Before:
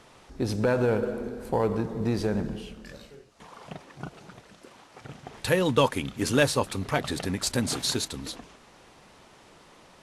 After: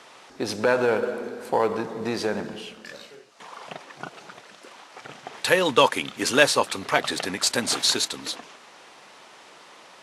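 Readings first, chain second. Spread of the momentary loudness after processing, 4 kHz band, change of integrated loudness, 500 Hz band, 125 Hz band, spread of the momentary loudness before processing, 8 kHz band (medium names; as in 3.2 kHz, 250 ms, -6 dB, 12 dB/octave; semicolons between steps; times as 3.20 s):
21 LU, +7.5 dB, +4.0 dB, +3.0 dB, -9.0 dB, 20 LU, +5.5 dB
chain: frequency weighting A; trim +6.5 dB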